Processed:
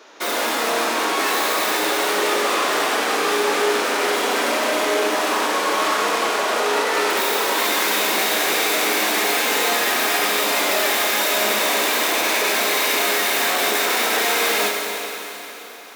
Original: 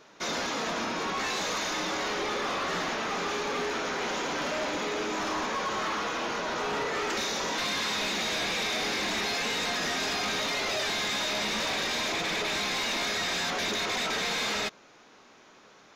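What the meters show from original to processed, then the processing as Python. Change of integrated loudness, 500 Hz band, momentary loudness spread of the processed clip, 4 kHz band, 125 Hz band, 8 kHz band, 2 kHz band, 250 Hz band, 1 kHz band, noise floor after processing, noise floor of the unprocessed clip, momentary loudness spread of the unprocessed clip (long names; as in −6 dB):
+10.5 dB, +12.0 dB, 3 LU, +8.5 dB, can't be measured, +12.0 dB, +10.5 dB, +7.5 dB, +11.0 dB, −34 dBFS, −56 dBFS, 3 LU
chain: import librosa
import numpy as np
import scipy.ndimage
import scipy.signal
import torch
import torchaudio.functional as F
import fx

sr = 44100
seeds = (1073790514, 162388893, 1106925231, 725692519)

y = fx.tracing_dist(x, sr, depth_ms=0.17)
y = scipy.signal.sosfilt(scipy.signal.butter(4, 280.0, 'highpass', fs=sr, output='sos'), y)
y = fx.rev_schroeder(y, sr, rt60_s=3.7, comb_ms=30, drr_db=1.0)
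y = F.gain(torch.from_numpy(y), 8.5).numpy()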